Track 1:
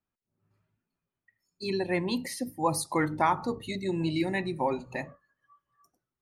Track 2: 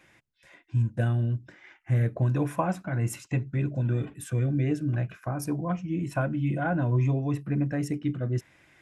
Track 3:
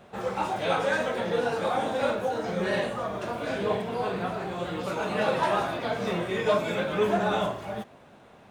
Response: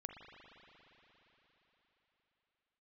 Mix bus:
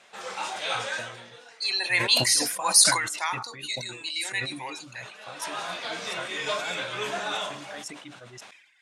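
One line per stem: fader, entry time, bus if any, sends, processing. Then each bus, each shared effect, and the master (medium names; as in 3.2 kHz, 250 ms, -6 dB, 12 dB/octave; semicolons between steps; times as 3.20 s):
1.50 s -10 dB -> 1.83 s -0.5 dB -> 2.79 s -0.5 dB -> 3.03 s -7.5 dB -> 4.81 s -7.5 dB -> 5.03 s -16 dB, 0.00 s, no send, high-pass 300 Hz; tilt shelf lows -8 dB, about 780 Hz
-6.5 dB, 0.00 s, no send, reverb removal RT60 1.4 s
-4.0 dB, 0.00 s, muted 3.39–4.43 s, no send, auto duck -22 dB, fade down 0.80 s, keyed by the first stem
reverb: none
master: frequency weighting ITU-R 468; decay stretcher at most 65 dB/s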